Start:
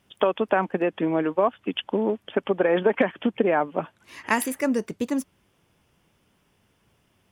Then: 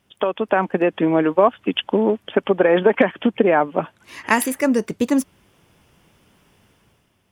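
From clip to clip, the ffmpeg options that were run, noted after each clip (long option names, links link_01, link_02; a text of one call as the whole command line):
ffmpeg -i in.wav -af "dynaudnorm=framelen=120:gausssize=9:maxgain=9dB" out.wav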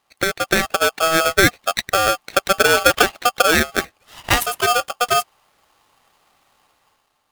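ffmpeg -i in.wav -filter_complex "[0:a]asplit=2[link_01][link_02];[link_02]aeval=exprs='sgn(val(0))*max(abs(val(0))-0.0282,0)':channel_layout=same,volume=-4dB[link_03];[link_01][link_03]amix=inputs=2:normalize=0,aeval=exprs='val(0)*sgn(sin(2*PI*970*n/s))':channel_layout=same,volume=-3.5dB" out.wav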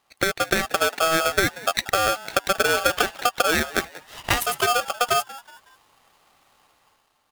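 ffmpeg -i in.wav -filter_complex "[0:a]acompressor=threshold=-17dB:ratio=6,asplit=4[link_01][link_02][link_03][link_04];[link_02]adelay=185,afreqshift=110,volume=-18.5dB[link_05];[link_03]adelay=370,afreqshift=220,volume=-26.7dB[link_06];[link_04]adelay=555,afreqshift=330,volume=-34.9dB[link_07];[link_01][link_05][link_06][link_07]amix=inputs=4:normalize=0" out.wav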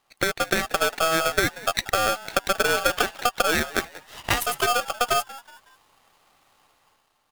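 ffmpeg -i in.wav -af "aeval=exprs='if(lt(val(0),0),0.708*val(0),val(0))':channel_layout=same" out.wav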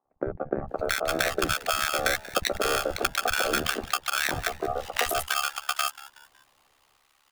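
ffmpeg -i in.wav -filter_complex "[0:a]tremolo=f=70:d=0.974,acrossover=split=180|930[link_01][link_02][link_03];[link_01]adelay=50[link_04];[link_03]adelay=680[link_05];[link_04][link_02][link_05]amix=inputs=3:normalize=0,volume=2dB" out.wav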